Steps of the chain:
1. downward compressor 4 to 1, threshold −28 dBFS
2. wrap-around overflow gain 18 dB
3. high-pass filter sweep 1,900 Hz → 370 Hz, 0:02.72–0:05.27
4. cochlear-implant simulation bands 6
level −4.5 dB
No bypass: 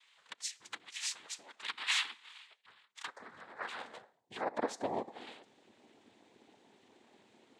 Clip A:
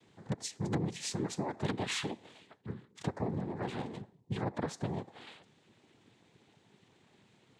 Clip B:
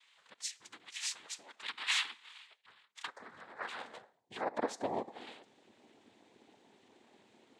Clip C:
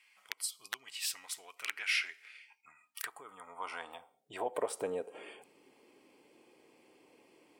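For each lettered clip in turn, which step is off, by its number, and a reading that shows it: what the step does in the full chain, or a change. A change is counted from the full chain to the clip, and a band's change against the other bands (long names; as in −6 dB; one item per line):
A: 3, 125 Hz band +25.5 dB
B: 2, distortion level −15 dB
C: 4, 250 Hz band −4.5 dB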